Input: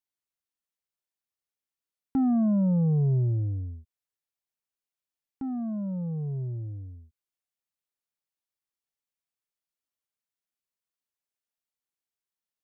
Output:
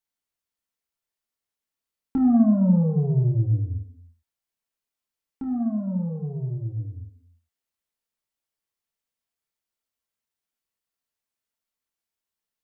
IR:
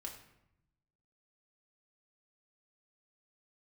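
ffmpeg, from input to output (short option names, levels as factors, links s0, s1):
-filter_complex "[1:a]atrim=start_sample=2205,afade=t=out:st=0.43:d=0.01,atrim=end_sample=19404[s0];[0:a][s0]afir=irnorm=-1:irlink=0,volume=2.24"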